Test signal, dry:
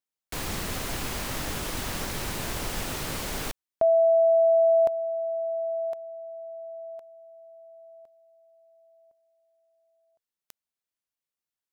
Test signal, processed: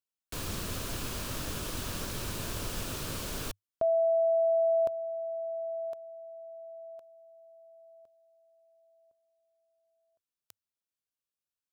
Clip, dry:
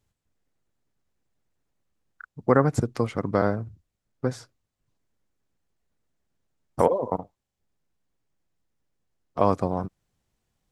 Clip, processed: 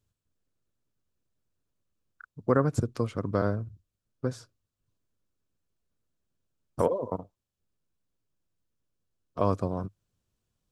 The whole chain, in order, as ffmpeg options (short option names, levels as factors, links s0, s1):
-af "equalizer=f=100:t=o:w=0.33:g=5,equalizer=f=800:t=o:w=0.33:g=-8,equalizer=f=2000:t=o:w=0.33:g=-8,volume=0.631"